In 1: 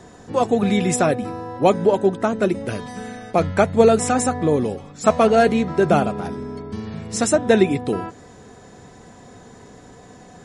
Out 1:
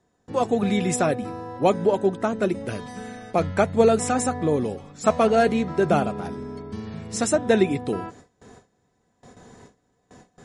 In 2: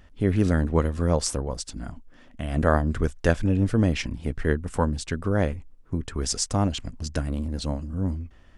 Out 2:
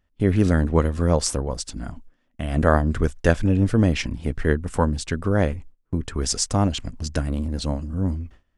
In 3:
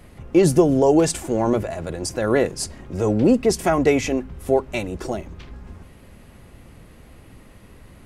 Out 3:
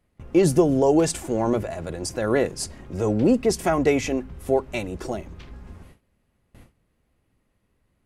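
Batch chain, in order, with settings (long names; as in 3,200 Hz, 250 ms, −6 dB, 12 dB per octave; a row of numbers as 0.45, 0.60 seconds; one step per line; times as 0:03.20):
noise gate with hold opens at −33 dBFS
loudness normalisation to −23 LKFS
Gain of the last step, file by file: −3.5, +3.0, −2.5 decibels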